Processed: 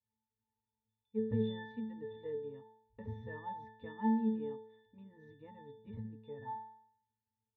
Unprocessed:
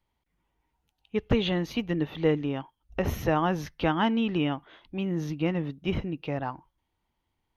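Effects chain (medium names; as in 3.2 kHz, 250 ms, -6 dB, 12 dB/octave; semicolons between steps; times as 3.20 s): pitch-class resonator A, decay 0.66 s; trim +4.5 dB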